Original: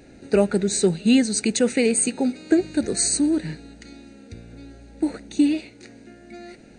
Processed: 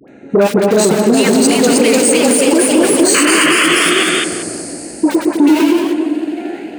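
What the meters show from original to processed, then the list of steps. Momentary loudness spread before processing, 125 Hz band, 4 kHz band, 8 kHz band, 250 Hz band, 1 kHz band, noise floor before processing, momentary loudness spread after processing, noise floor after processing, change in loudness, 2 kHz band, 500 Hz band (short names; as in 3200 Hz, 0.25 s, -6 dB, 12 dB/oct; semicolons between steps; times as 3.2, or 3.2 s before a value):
9 LU, +6.5 dB, +15.5 dB, +10.5 dB, +9.5 dB, +20.5 dB, -48 dBFS, 10 LU, -30 dBFS, +10.0 dB, +19.0 dB, +12.5 dB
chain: Wiener smoothing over 9 samples; swelling echo 89 ms, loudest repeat 5, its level -16.5 dB; in parallel at -4.5 dB: sample gate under -20.5 dBFS; on the sum: dispersion highs, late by 82 ms, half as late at 920 Hz; painted sound noise, 3.14–3.65, 990–3100 Hz -19 dBFS; soft clip -7.5 dBFS, distortion -18 dB; HPF 130 Hz 12 dB/oct; low shelf 200 Hz -9.5 dB; on a send: darkening echo 0.22 s, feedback 58%, low-pass 840 Hz, level -5 dB; on the sum: echoes that change speed 0.392 s, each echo +1 st, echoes 3; maximiser +12.5 dB; gain -1 dB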